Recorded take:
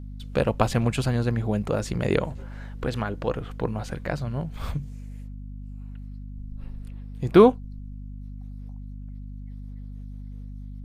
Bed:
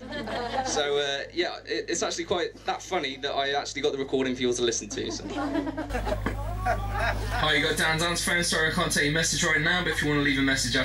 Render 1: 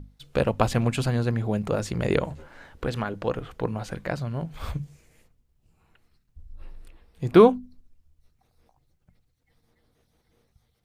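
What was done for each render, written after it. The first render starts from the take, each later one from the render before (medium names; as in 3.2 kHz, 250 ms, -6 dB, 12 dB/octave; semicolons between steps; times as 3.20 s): hum notches 50/100/150/200/250 Hz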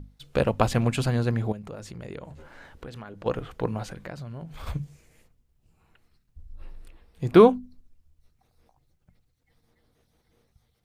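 1.52–3.26 s: compression 2.5:1, threshold -42 dBFS; 3.86–4.67 s: compression 3:1, threshold -36 dBFS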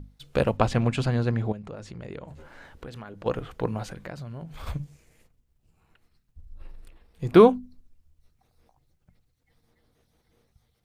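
0.57–2.28 s: distance through air 61 m; 4.75–7.29 s: partial rectifier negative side -3 dB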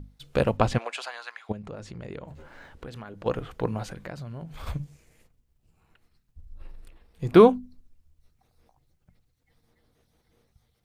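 0.77–1.49 s: high-pass 480 Hz -> 1.3 kHz 24 dB/octave; 2.21–2.85 s: decimation joined by straight lines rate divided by 2×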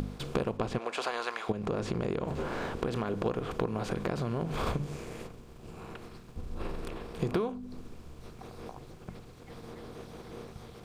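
spectral levelling over time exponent 0.6; compression 12:1, threshold -27 dBFS, peak gain reduction 20 dB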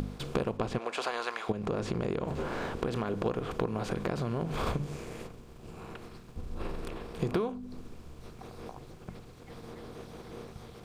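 no audible change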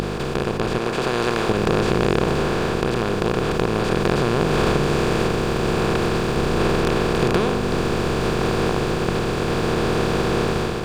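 spectral levelling over time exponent 0.2; level rider gain up to 6 dB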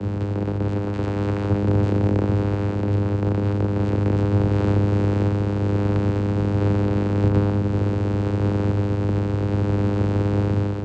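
octave divider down 1 oct, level +1 dB; vocoder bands 8, saw 101 Hz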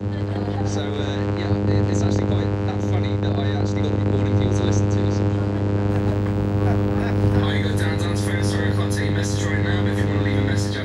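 add bed -6 dB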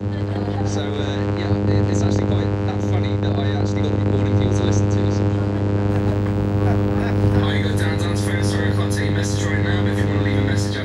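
trim +1.5 dB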